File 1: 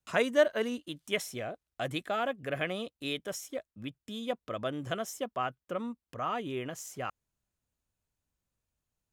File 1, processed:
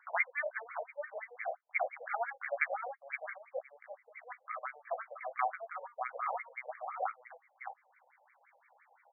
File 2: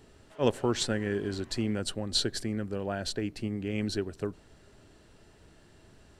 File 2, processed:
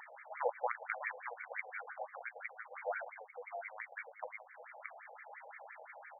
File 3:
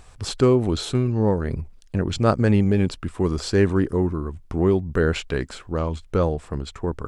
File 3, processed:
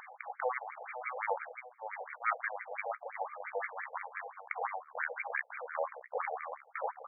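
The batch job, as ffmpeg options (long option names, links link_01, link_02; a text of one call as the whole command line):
ffmpeg -i in.wav -filter_complex "[0:a]acrossover=split=1700[link_01][link_02];[link_01]asoftclip=type=tanh:threshold=-17.5dB[link_03];[link_03][link_02]amix=inputs=2:normalize=0,bandreject=frequency=50:width_type=h:width=6,bandreject=frequency=100:width_type=h:width=6,bandreject=frequency=150:width_type=h:width=6,bandreject=frequency=200:width_type=h:width=6,bandreject=frequency=250:width_type=h:width=6,bandreject=frequency=300:width_type=h:width=6,bandreject=frequency=350:width_type=h:width=6,bandreject=frequency=400:width_type=h:width=6,asplit=2[link_04][link_05];[link_05]adelay=16,volume=-5.5dB[link_06];[link_04][link_06]amix=inputs=2:normalize=0,acompressor=threshold=-33dB:ratio=2,equalizer=frequency=100:width_type=o:width=0.33:gain=5,equalizer=frequency=250:width_type=o:width=0.33:gain=5,equalizer=frequency=800:width_type=o:width=0.33:gain=9,equalizer=frequency=4000:width_type=o:width=0.33:gain=12,aeval=exprs='0.1*(cos(1*acos(clip(val(0)/0.1,-1,1)))-cos(1*PI/2))+0.0112*(cos(2*acos(clip(val(0)/0.1,-1,1)))-cos(2*PI/2))+0.0224*(cos(3*acos(clip(val(0)/0.1,-1,1)))-cos(3*PI/2))+0.00631*(cos(4*acos(clip(val(0)/0.1,-1,1)))-cos(4*PI/2))+0.00562*(cos(5*acos(clip(val(0)/0.1,-1,1)))-cos(5*PI/2))':channel_layout=same,acompressor=mode=upward:threshold=-36dB:ratio=2.5,equalizer=frequency=2200:width_type=o:width=0.46:gain=13.5,asplit=2[link_07][link_08];[link_08]aecho=0:1:44|619:0.1|0.447[link_09];[link_07][link_09]amix=inputs=2:normalize=0,afftfilt=real='re*between(b*sr/1024,620*pow(1700/620,0.5+0.5*sin(2*PI*5.8*pts/sr))/1.41,620*pow(1700/620,0.5+0.5*sin(2*PI*5.8*pts/sr))*1.41)':imag='im*between(b*sr/1024,620*pow(1700/620,0.5+0.5*sin(2*PI*5.8*pts/sr))/1.41,620*pow(1700/620,0.5+0.5*sin(2*PI*5.8*pts/sr))*1.41)':win_size=1024:overlap=0.75,volume=3dB" out.wav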